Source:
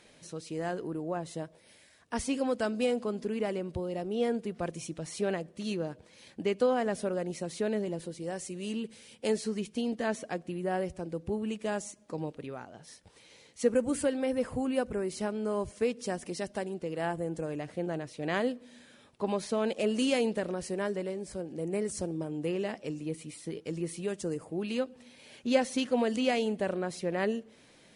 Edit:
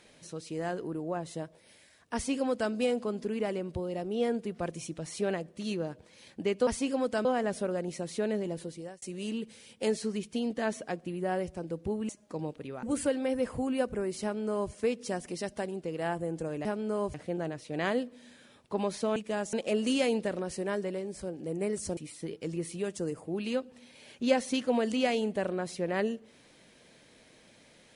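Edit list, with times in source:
2.14–2.72 s: copy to 6.67 s
8.13–8.44 s: fade out
11.51–11.88 s: move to 19.65 s
12.62–13.81 s: delete
15.21–15.70 s: copy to 17.63 s
22.09–23.21 s: delete

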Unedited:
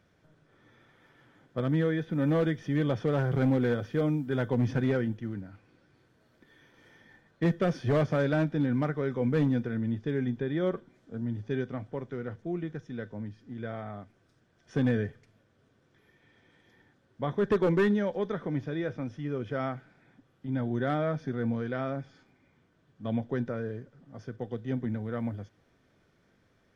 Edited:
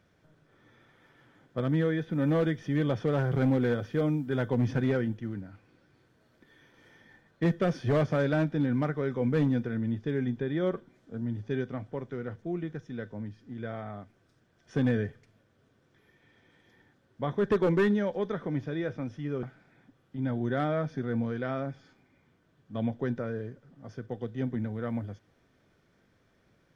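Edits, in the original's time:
19.43–19.73 s: delete

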